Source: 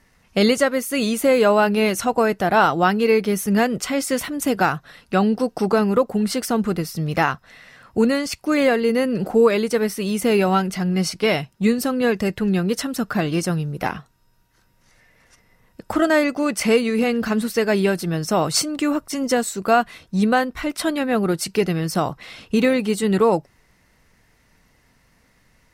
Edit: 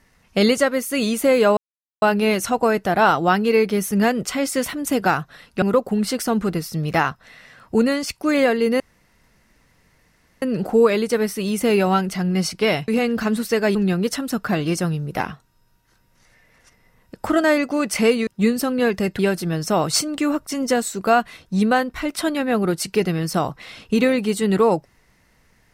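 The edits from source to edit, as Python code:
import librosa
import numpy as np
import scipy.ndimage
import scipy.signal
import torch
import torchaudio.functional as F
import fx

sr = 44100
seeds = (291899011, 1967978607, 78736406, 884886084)

y = fx.edit(x, sr, fx.insert_silence(at_s=1.57, length_s=0.45),
    fx.cut(start_s=5.17, length_s=0.68),
    fx.insert_room_tone(at_s=9.03, length_s=1.62),
    fx.swap(start_s=11.49, length_s=0.92, other_s=16.93, other_length_s=0.87), tone=tone)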